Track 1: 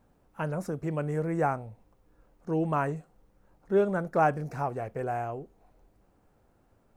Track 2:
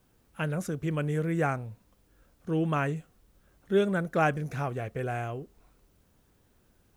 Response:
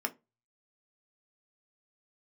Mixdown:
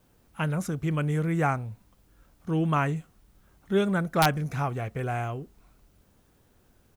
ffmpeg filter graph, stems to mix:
-filter_complex "[0:a]volume=-7dB[link_01];[1:a]aeval=exprs='(mod(5.01*val(0)+1,2)-1)/5.01':channel_layout=same,adelay=0.8,volume=2.5dB[link_02];[link_01][link_02]amix=inputs=2:normalize=0"

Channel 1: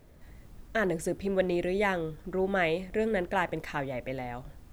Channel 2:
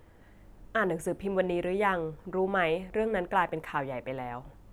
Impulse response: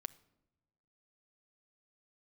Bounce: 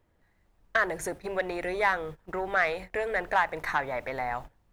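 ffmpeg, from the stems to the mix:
-filter_complex "[0:a]equalizer=frequency=1700:width=0.3:gain=8,acompressor=threshold=-26dB:ratio=1.5,volume=-3dB[link_01];[1:a]acompressor=threshold=-33dB:ratio=2,asoftclip=type=tanh:threshold=-26.5dB,volume=-1,volume=2.5dB,asplit=2[link_02][link_03];[link_03]volume=-4.5dB[link_04];[2:a]atrim=start_sample=2205[link_05];[link_04][link_05]afir=irnorm=-1:irlink=0[link_06];[link_01][link_02][link_06]amix=inputs=3:normalize=0,agate=range=-19dB:threshold=-38dB:ratio=16:detection=peak"

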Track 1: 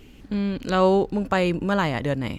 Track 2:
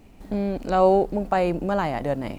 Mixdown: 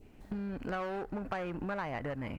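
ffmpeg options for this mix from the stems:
ffmpeg -i stem1.wav -i stem2.wav -filter_complex "[0:a]lowpass=frequency=2100:width=0.5412,lowpass=frequency=2100:width=1.3066,acompressor=threshold=-25dB:ratio=6,asoftclip=type=tanh:threshold=-24.5dB,volume=2.5dB[link_01];[1:a]asoftclip=type=hard:threshold=-22.5dB,volume=-1,adelay=0.7,volume=-10dB,asplit=2[link_02][link_03];[link_03]apad=whole_len=105144[link_04];[link_01][link_04]sidechaingate=range=-12dB:threshold=-44dB:ratio=16:detection=peak[link_05];[link_05][link_02]amix=inputs=2:normalize=0,adynamicequalizer=threshold=0.00501:dfrequency=1600:dqfactor=1.3:tfrequency=1600:tqfactor=1.3:attack=5:release=100:ratio=0.375:range=3.5:mode=boostabove:tftype=bell,acompressor=threshold=-38dB:ratio=2.5" out.wav

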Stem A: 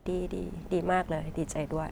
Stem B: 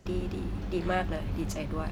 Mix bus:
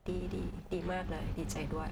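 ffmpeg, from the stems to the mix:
ffmpeg -i stem1.wav -i stem2.wav -filter_complex "[0:a]equalizer=frequency=290:width=2.1:gain=-11.5,volume=-5.5dB,asplit=2[link_01][link_02];[1:a]volume=-1dB[link_03];[link_02]apad=whole_len=84372[link_04];[link_03][link_04]sidechaingate=range=-33dB:threshold=-44dB:ratio=16:detection=peak[link_05];[link_01][link_05]amix=inputs=2:normalize=0,acompressor=threshold=-33dB:ratio=6" out.wav

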